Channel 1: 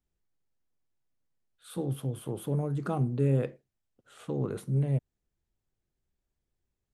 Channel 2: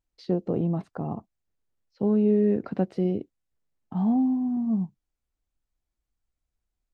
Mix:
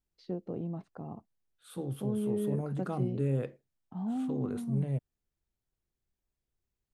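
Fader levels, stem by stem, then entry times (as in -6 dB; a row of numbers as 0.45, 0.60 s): -4.5, -11.0 dB; 0.00, 0.00 s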